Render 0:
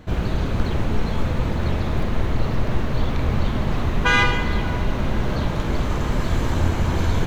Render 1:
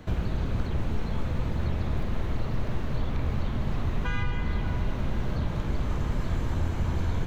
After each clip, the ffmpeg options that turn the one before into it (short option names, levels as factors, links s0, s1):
-filter_complex "[0:a]acrossover=split=190|2800[s0][s1][s2];[s0]acompressor=threshold=0.0794:ratio=4[s3];[s1]acompressor=threshold=0.0158:ratio=4[s4];[s2]acompressor=threshold=0.00224:ratio=4[s5];[s3][s4][s5]amix=inputs=3:normalize=0,volume=0.841"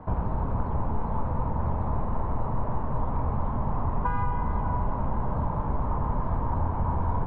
-af "lowpass=f=960:t=q:w=4.7,equalizer=f=350:w=7.3:g=-6"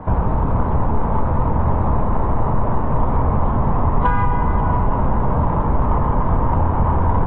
-filter_complex "[0:a]asplit=2[s0][s1];[s1]asoftclip=type=tanh:threshold=0.0668,volume=0.668[s2];[s0][s2]amix=inputs=2:normalize=0,volume=2.11" -ar 24000 -c:a aac -b:a 16k